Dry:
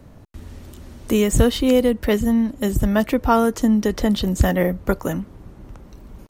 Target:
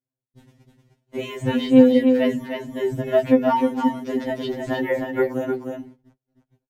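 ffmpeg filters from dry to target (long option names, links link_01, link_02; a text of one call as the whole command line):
ffmpeg -i in.wav -filter_complex "[0:a]acrossover=split=180|930|5700[link_01][link_02][link_03][link_04];[link_01]asoftclip=type=tanh:threshold=-14.5dB[link_05];[link_05][link_02][link_03][link_04]amix=inputs=4:normalize=0,acrossover=split=3500[link_06][link_07];[link_07]acompressor=threshold=-47dB:ratio=4:attack=1:release=60[link_08];[link_06][link_08]amix=inputs=2:normalize=0,highshelf=frequency=5100:gain=-5.5,bandreject=frequency=125.4:width_type=h:width=4,bandreject=frequency=250.8:width_type=h:width=4,bandreject=frequency=376.2:width_type=h:width=4,bandreject=frequency=501.6:width_type=h:width=4,bandreject=frequency=627:width_type=h:width=4,bandreject=frequency=752.4:width_type=h:width=4,bandreject=frequency=877.8:width_type=h:width=4,bandreject=frequency=1003.2:width_type=h:width=4,bandreject=frequency=1128.6:width_type=h:width=4,bandreject=frequency=1254:width_type=h:width=4,bandreject=frequency=1379.4:width_type=h:width=4,bandreject=frequency=1504.8:width_type=h:width=4,bandreject=frequency=1630.2:width_type=h:width=4,bandreject=frequency=1755.6:width_type=h:width=4,bandreject=frequency=1881:width_type=h:width=4,bandreject=frequency=2006.4:width_type=h:width=4,bandreject=frequency=2131.8:width_type=h:width=4,bandreject=frequency=2257.2:width_type=h:width=4,bandreject=frequency=2382.6:width_type=h:width=4,bandreject=frequency=2508:width_type=h:width=4,bandreject=frequency=2633.4:width_type=h:width=4,bandreject=frequency=2758.8:width_type=h:width=4,bandreject=frequency=2884.2:width_type=h:width=4,bandreject=frequency=3009.6:width_type=h:width=4,bandreject=frequency=3135:width_type=h:width=4,bandreject=frequency=3260.4:width_type=h:width=4,bandreject=frequency=3385.8:width_type=h:width=4,atempo=0.94,agate=range=-44dB:threshold=-34dB:ratio=16:detection=peak,highpass=frequency=57:poles=1,equalizer=frequency=1200:width=6.2:gain=-13.5,aecho=1:1:307:0.562,afftfilt=real='re*2.45*eq(mod(b,6),0)':imag='im*2.45*eq(mod(b,6),0)':win_size=2048:overlap=0.75,volume=1.5dB" out.wav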